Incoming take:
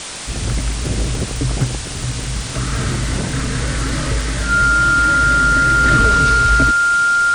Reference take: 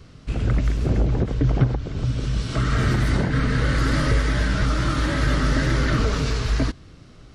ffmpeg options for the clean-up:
-af "adeclick=t=4,bandreject=f=1.4k:w=30,afwtdn=0.05,asetnsamples=n=441:p=0,asendcmd='5.84 volume volume -4.5dB',volume=0dB"

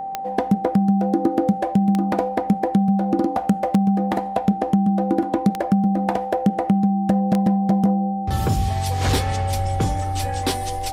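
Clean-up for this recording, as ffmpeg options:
-af "adeclick=t=4,bandreject=f=780:w=30"

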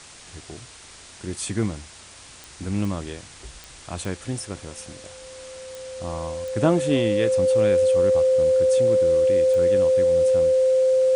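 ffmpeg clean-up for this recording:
-af "adeclick=t=4,bandreject=f=520:w=30,afwtdn=0.0079"

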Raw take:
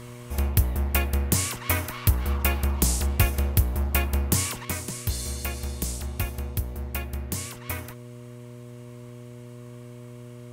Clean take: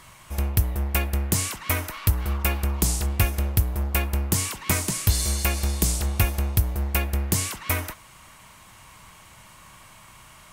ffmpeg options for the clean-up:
-af "bandreject=f=121.1:t=h:w=4,bandreject=f=242.2:t=h:w=4,bandreject=f=363.3:t=h:w=4,bandreject=f=484.4:t=h:w=4,bandreject=f=605.5:t=h:w=4,asetnsamples=n=441:p=0,asendcmd='4.65 volume volume 7.5dB',volume=0dB"

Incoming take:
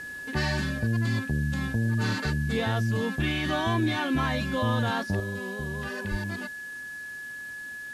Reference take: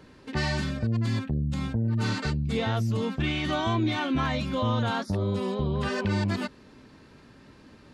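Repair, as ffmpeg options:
-filter_complex "[0:a]bandreject=f=1.7k:w=30,asplit=3[a][b][c];[a]afade=t=out:st=6.1:d=0.02[d];[b]highpass=f=140:w=0.5412,highpass=f=140:w=1.3066,afade=t=in:st=6.1:d=0.02,afade=t=out:st=6.22:d=0.02[e];[c]afade=t=in:st=6.22:d=0.02[f];[d][e][f]amix=inputs=3:normalize=0,afwtdn=0.0025,asetnsamples=n=441:p=0,asendcmd='5.2 volume volume 7dB',volume=0dB"

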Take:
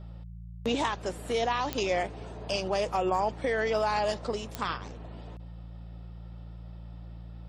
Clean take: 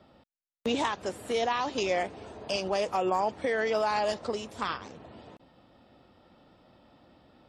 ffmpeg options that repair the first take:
-af "adeclick=t=4,bandreject=f=56.9:t=h:w=4,bandreject=f=113.8:t=h:w=4,bandreject=f=170.7:t=h:w=4"

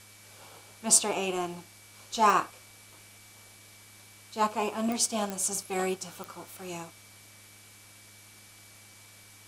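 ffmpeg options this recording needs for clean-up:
-af "adeclick=t=4,bandreject=f=103.6:t=h:w=4,bandreject=f=207.2:t=h:w=4,bandreject=f=310.8:t=h:w=4,bandreject=f=2.3k:w=30,afwtdn=0.0025"

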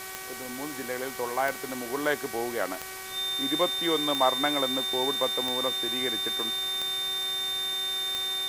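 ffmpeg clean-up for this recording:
-af "adeclick=t=4,bandreject=f=378.5:t=h:w=4,bandreject=f=757:t=h:w=4,bandreject=f=1.1355k:t=h:w=4,bandreject=f=1.514k:t=h:w=4,bandreject=f=1.8925k:t=h:w=4,bandreject=f=2.271k:t=h:w=4,bandreject=f=3.6k:w=30,afwtdn=0.01"

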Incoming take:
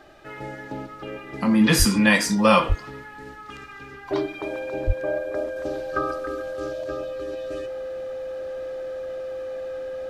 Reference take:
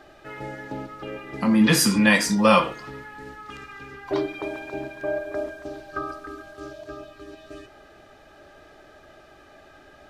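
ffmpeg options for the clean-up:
-filter_complex "[0:a]bandreject=f=520:w=30,asplit=3[a][b][c];[a]afade=t=out:st=1.78:d=0.02[d];[b]highpass=f=140:w=0.5412,highpass=f=140:w=1.3066,afade=t=in:st=1.78:d=0.02,afade=t=out:st=1.9:d=0.02[e];[c]afade=t=in:st=1.9:d=0.02[f];[d][e][f]amix=inputs=3:normalize=0,asplit=3[g][h][i];[g]afade=t=out:st=2.68:d=0.02[j];[h]highpass=f=140:w=0.5412,highpass=f=140:w=1.3066,afade=t=in:st=2.68:d=0.02,afade=t=out:st=2.8:d=0.02[k];[i]afade=t=in:st=2.8:d=0.02[l];[j][k][l]amix=inputs=3:normalize=0,asplit=3[m][n][o];[m]afade=t=out:st=4.86:d=0.02[p];[n]highpass=f=140:w=0.5412,highpass=f=140:w=1.3066,afade=t=in:st=4.86:d=0.02,afade=t=out:st=4.98:d=0.02[q];[o]afade=t=in:st=4.98:d=0.02[r];[p][q][r]amix=inputs=3:normalize=0,asetnsamples=n=441:p=0,asendcmd='5.56 volume volume -4.5dB',volume=0dB"

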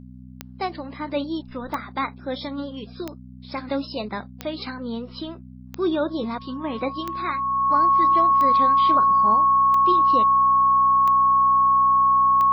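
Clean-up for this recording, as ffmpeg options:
-af "adeclick=t=4,bandreject=f=62.9:t=h:w=4,bandreject=f=125.8:t=h:w=4,bandreject=f=188.7:t=h:w=4,bandreject=f=251.6:t=h:w=4,bandreject=f=1.1k:w=30"

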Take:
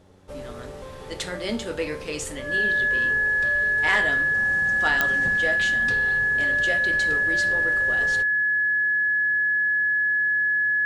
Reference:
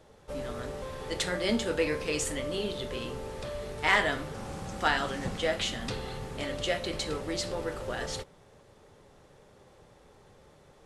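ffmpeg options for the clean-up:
-af "adeclick=t=4,bandreject=f=93.6:t=h:w=4,bandreject=f=187.2:t=h:w=4,bandreject=f=280.8:t=h:w=4,bandreject=f=374.4:t=h:w=4,bandreject=f=1.7k:w=30"

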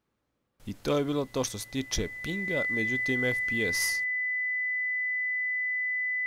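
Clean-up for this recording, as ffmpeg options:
-af "bandreject=f=2k:w=30"

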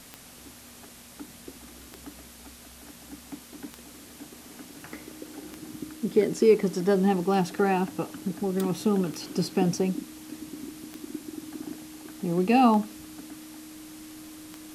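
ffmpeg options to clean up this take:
-af "adeclick=t=4,bandreject=f=310:w=30,afwtdn=0.004"

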